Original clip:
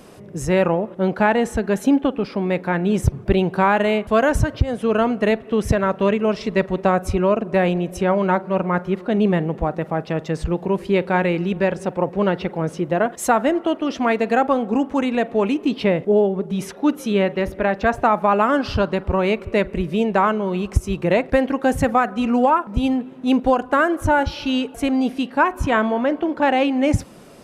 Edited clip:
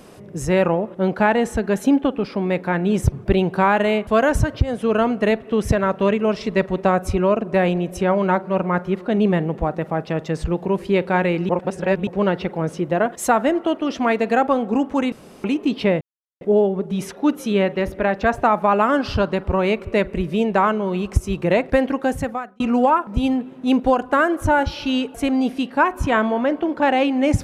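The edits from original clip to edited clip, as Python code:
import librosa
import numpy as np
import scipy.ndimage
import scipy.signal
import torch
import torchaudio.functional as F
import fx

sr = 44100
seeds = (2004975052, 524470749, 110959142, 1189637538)

y = fx.edit(x, sr, fx.reverse_span(start_s=11.49, length_s=0.58),
    fx.room_tone_fill(start_s=15.12, length_s=0.32),
    fx.insert_silence(at_s=16.01, length_s=0.4),
    fx.fade_out_span(start_s=21.5, length_s=0.7), tone=tone)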